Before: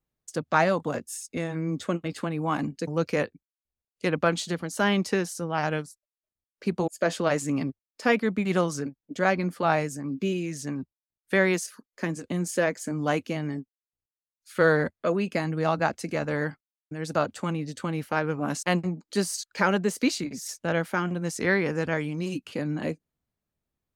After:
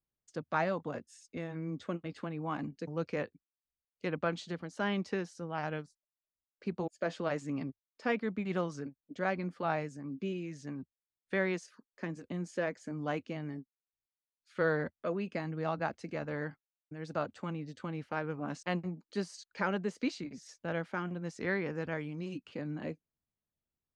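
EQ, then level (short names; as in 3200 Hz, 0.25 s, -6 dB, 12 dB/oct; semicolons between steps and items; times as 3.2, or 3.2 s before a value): air absorption 120 m; -9.0 dB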